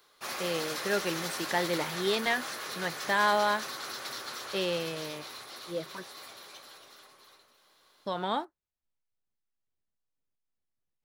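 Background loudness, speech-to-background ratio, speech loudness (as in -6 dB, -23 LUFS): -37.5 LUFS, 6.0 dB, -31.5 LUFS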